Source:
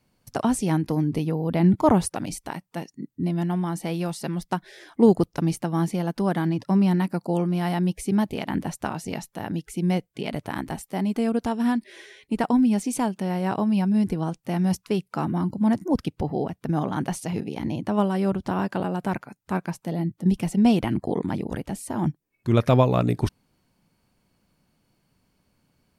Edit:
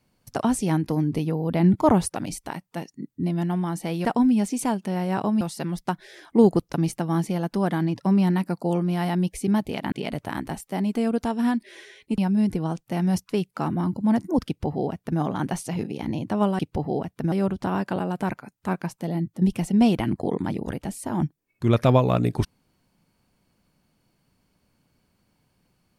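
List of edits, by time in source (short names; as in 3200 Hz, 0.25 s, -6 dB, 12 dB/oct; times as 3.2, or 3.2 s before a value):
8.56–10.13 cut
12.39–13.75 move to 4.05
16.04–16.77 copy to 18.16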